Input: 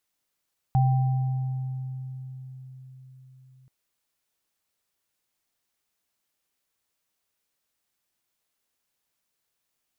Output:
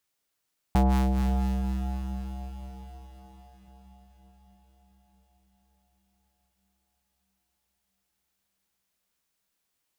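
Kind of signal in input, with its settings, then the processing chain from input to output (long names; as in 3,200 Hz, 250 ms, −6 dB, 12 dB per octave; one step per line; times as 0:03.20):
inharmonic partials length 2.93 s, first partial 130 Hz, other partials 784 Hz, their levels −8 dB, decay 4.89 s, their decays 1.96 s, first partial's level −17 dB
sub-harmonics by changed cycles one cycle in 2, inverted
on a send: feedback delay with all-pass diffusion 510 ms, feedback 61%, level −12 dB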